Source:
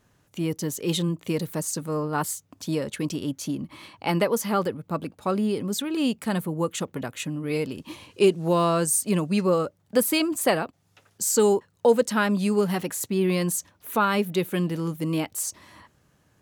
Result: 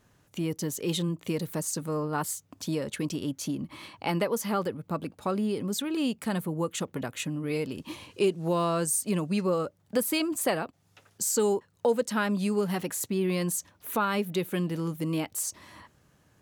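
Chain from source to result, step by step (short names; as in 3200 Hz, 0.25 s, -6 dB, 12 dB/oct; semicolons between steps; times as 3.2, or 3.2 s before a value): compressor 1.5:1, threshold -32 dBFS, peak gain reduction 7 dB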